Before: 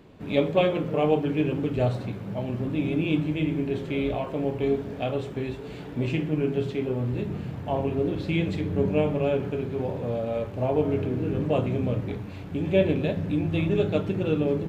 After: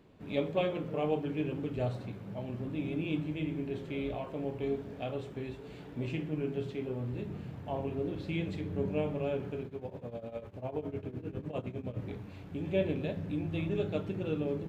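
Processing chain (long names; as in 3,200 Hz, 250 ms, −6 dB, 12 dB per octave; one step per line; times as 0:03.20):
0:09.63–0:11.97: shaped tremolo triangle 9.9 Hz, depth 90%
level −9 dB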